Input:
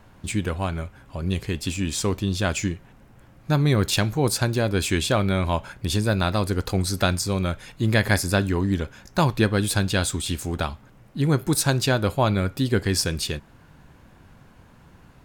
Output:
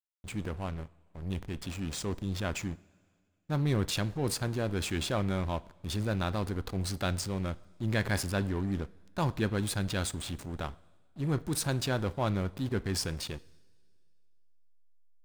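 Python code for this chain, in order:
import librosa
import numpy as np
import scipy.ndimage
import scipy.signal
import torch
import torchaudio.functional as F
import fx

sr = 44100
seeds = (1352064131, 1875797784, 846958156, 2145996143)

y = fx.backlash(x, sr, play_db=-25.5)
y = fx.rev_double_slope(y, sr, seeds[0], early_s=0.5, late_s=2.4, knee_db=-16, drr_db=20.0)
y = fx.transient(y, sr, attack_db=-4, sustain_db=3)
y = y * librosa.db_to_amplitude(-8.0)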